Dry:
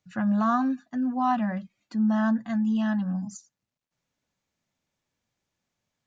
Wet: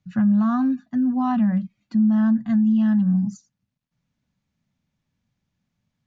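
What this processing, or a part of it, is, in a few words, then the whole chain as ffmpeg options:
jukebox: -af "lowpass=5700,lowshelf=f=280:t=q:w=1.5:g=10,acompressor=threshold=0.141:ratio=3"

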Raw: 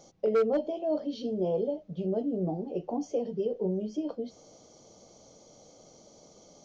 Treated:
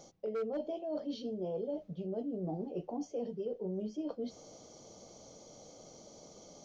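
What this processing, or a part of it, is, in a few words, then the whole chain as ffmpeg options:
compression on the reversed sound: -af "areverse,acompressor=threshold=0.0158:ratio=6,areverse,volume=1.12"

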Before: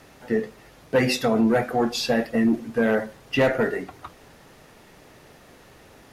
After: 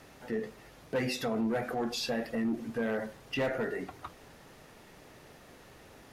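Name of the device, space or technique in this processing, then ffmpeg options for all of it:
clipper into limiter: -af "asoftclip=type=hard:threshold=0.188,alimiter=limit=0.0841:level=0:latency=1:release=74,volume=0.631"

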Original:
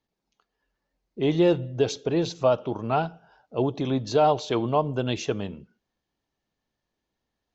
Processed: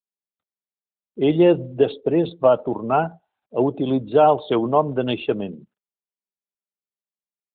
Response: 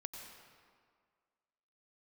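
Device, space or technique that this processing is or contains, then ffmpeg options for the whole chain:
mobile call with aggressive noise cancelling: -af "highpass=170,afftdn=nr=34:nf=-39,volume=2" -ar 8000 -c:a libopencore_amrnb -b:a 12200

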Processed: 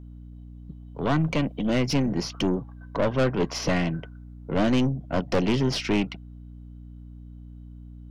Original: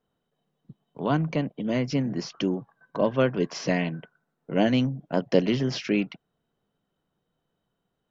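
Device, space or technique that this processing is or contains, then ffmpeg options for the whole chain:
valve amplifier with mains hum: -filter_complex "[0:a]bandreject=f=1700:w=10,asettb=1/sr,asplit=3[s0][s1][s2];[s0]atrim=end=1.174[s3];[s1]atrim=start=1.17:end=2.07,asetpts=PTS-STARTPTS,afade=t=in:d=0.004:c=qsin,afade=t=out:st=0.896:d=0.004:c=qsin,highshelf=f=2000:g=5[s4];[s2]atrim=start=2.066[s5];[s3][s4]acrossfade=d=0.004:c1=hsin:c2=qsin[s6];[s6][s5]acrossfade=d=0.004:c1=qsin:c2=hsin,aeval=exprs='(tanh(15.8*val(0)+0.45)-tanh(0.45))/15.8':c=same,aeval=exprs='val(0)+0.00447*(sin(2*PI*60*n/s)+sin(2*PI*2*60*n/s)/2+sin(2*PI*3*60*n/s)/3+sin(2*PI*4*60*n/s)/4+sin(2*PI*5*60*n/s)/5)':c=same,volume=2"

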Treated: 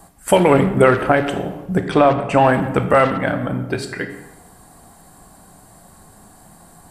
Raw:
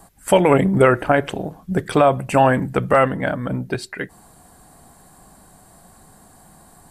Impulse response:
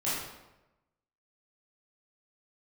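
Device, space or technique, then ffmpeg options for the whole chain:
saturated reverb return: -filter_complex "[0:a]asettb=1/sr,asplit=3[s0][s1][s2];[s0]atrim=end=1.784[s3];[s1]atrim=start=1.78:end=2.42,asetpts=PTS-STARTPTS,afade=t=in:d=0.004:c=qsin,afade=t=out:st=0.636:d=0.004:c=qsin,lowpass=5700[s4];[s2]atrim=start=2.416[s5];[s3][s4]acrossfade=d=0.004:c1=hsin:c2=qsin[s6];[s6][s5]acrossfade=d=0.004:c1=qsin:c2=hsin,asplit=2[s7][s8];[1:a]atrim=start_sample=2205[s9];[s8][s9]afir=irnorm=-1:irlink=0,asoftclip=type=tanh:threshold=0.501,volume=0.266[s10];[s7][s10]amix=inputs=2:normalize=0"

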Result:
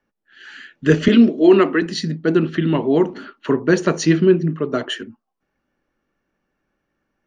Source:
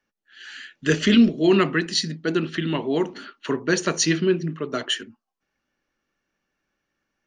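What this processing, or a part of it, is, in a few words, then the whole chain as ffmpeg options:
through cloth: -filter_complex "[0:a]asettb=1/sr,asplit=3[s0][s1][s2];[s0]atrim=end=1.084[s3];[s1]atrim=start=1.08:end=1.82,asetpts=PTS-STARTPTS,afade=t=in:d=0.004:c=qsin,afade=t=out:st=0.736:d=0.004:c=qsin,highpass=f=240:w=0.5412,highpass=f=240:w=1.3066[s4];[s2]atrim=start=1.816[s5];[s3][s4]acrossfade=d=0.004:c1=hsin:c2=qsin[s6];[s6][s5]acrossfade=d=0.004:c1=qsin:c2=hsin,highshelf=f=2000:g=-14,volume=2.37"

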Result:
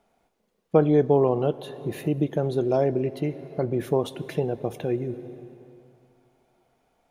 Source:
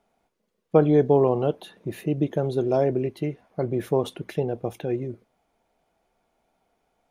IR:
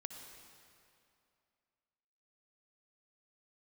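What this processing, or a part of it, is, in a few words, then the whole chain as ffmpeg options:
ducked reverb: -filter_complex "[0:a]asplit=3[s0][s1][s2];[1:a]atrim=start_sample=2205[s3];[s1][s3]afir=irnorm=-1:irlink=0[s4];[s2]apad=whole_len=313426[s5];[s4][s5]sidechaincompress=threshold=0.0398:ratio=8:attack=16:release=585,volume=1.19[s6];[s0][s6]amix=inputs=2:normalize=0,volume=0.794"

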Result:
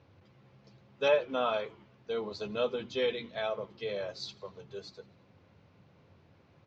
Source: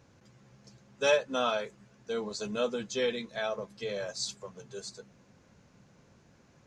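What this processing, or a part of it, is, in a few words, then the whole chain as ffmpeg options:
frequency-shifting delay pedal into a guitar cabinet: -filter_complex "[0:a]bandreject=f=60:t=h:w=6,bandreject=f=120:t=h:w=6,bandreject=f=180:t=h:w=6,bandreject=f=240:t=h:w=6,asettb=1/sr,asplit=3[s0][s1][s2];[s0]atrim=end=1.084[s3];[s1]atrim=start=1.08:end=1.54,asetpts=PTS-STARTPTS,afade=t=in:d=0.004:c=qsin,afade=t=out:st=0.456:d=0.004:c=qsin,acrossover=split=2600[s4][s5];[s5]acompressor=threshold=0.00631:ratio=4:attack=1:release=60[s6];[s4][s6]amix=inputs=2:normalize=0[s7];[s2]atrim=start=1.536[s8];[s3][s7]acrossfade=d=0.004:c1=hsin:c2=qsin[s9];[s9][s8]acrossfade=d=0.004:c1=qsin:c2=hsin,asplit=5[s10][s11][s12][s13][s14];[s11]adelay=84,afreqshift=-100,volume=0.0668[s15];[s12]adelay=168,afreqshift=-200,volume=0.0389[s16];[s13]adelay=252,afreqshift=-300,volume=0.0224[s17];[s14]adelay=336,afreqshift=-400,volume=0.013[s18];[s10][s15][s16][s17][s18]amix=inputs=5:normalize=0,highpass=76,equalizer=f=91:t=q:w=4:g=9,equalizer=f=220:t=q:w=4:g=-5,equalizer=f=1600:t=q:w=4:g=-5,lowpass=f=4100:w=0.5412,lowpass=f=4100:w=1.3066"

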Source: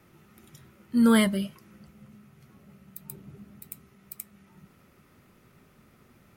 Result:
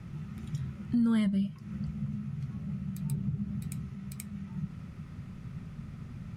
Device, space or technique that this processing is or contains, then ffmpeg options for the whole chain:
jukebox: -af "lowpass=7200,lowshelf=f=240:t=q:w=1.5:g=13.5,acompressor=threshold=0.0224:ratio=4,volume=1.58"

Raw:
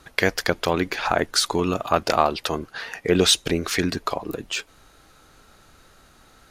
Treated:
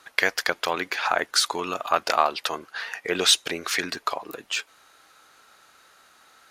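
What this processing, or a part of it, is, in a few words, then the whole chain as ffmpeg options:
filter by subtraction: -filter_complex "[0:a]asplit=2[s0][s1];[s1]lowpass=1300,volume=-1[s2];[s0][s2]amix=inputs=2:normalize=0,volume=0.891"

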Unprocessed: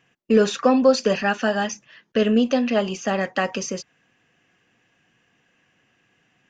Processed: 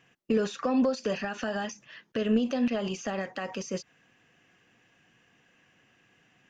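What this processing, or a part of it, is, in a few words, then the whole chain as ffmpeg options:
de-esser from a sidechain: -filter_complex "[0:a]asplit=2[s0][s1];[s1]highpass=f=4000:p=1,apad=whole_len=286592[s2];[s0][s2]sidechaincompress=threshold=0.0112:ratio=6:attack=0.68:release=85"

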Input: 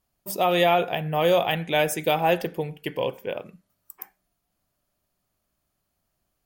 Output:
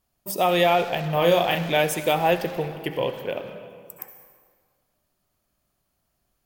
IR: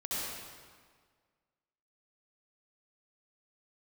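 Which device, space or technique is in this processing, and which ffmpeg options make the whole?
saturated reverb return: -filter_complex "[0:a]asettb=1/sr,asplit=3[s0][s1][s2];[s0]atrim=end=1.124[s3];[s1]atrim=start=1.12:end=1.77,asetpts=PTS-STARTPTS,afade=t=in:d=0.004:c=qsin,afade=t=out:st=0.646:d=0.004:c=qsin,asplit=2[s4][s5];[s5]adelay=35,volume=0.596[s6];[s4][s6]amix=inputs=2:normalize=0,atrim=end_sample=28665[s7];[s2]atrim=start=1.766[s8];[s3][s7]acrossfade=d=0.004:c1=hsin:c2=qsin[s9];[s9][s8]acrossfade=d=0.004:c1=qsin:c2=hsin,asplit=2[s10][s11];[1:a]atrim=start_sample=2205[s12];[s11][s12]afir=irnorm=-1:irlink=0,asoftclip=type=tanh:threshold=0.0668,volume=0.376[s13];[s10][s13]amix=inputs=2:normalize=0"

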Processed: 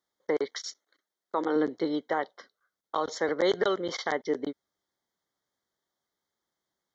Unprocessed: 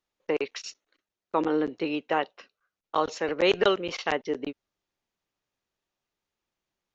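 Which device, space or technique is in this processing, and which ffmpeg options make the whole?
PA system with an anti-feedback notch: -filter_complex "[0:a]asettb=1/sr,asplit=3[s0][s1][s2];[s0]atrim=end=0.594[s3];[s1]atrim=start=0.59:end=1.56,asetpts=PTS-STARTPTS,afade=t=in:d=0.004:c=qsin,afade=t=out:st=0.966:d=0.004:c=qsin,highpass=f=280:p=1[s4];[s2]atrim=start=1.556[s5];[s3][s4]acrossfade=d=0.004:c1=hsin:c2=qsin[s6];[s6][s5]acrossfade=d=0.004:c1=qsin:c2=hsin,highpass=f=160:p=1,asuperstop=centerf=2600:order=12:qfactor=3,alimiter=limit=0.133:level=0:latency=1:release=139,volume=1.19"

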